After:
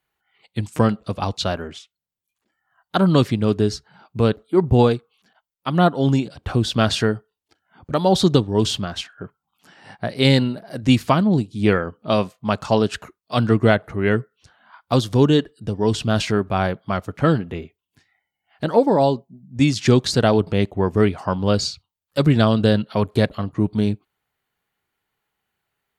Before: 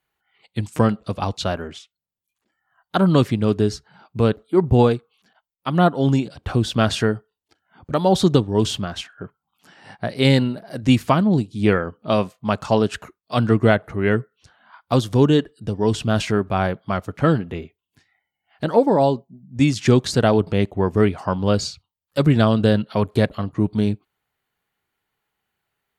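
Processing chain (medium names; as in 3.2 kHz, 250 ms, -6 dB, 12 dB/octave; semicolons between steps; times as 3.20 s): dynamic bell 4.4 kHz, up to +4 dB, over -39 dBFS, Q 1.5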